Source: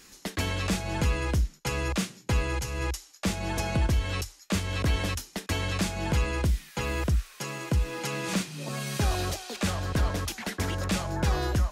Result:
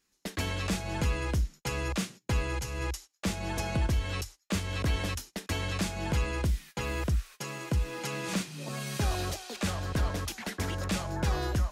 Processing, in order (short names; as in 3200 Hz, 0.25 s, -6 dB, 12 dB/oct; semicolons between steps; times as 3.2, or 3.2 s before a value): gate -42 dBFS, range -20 dB; gain -3 dB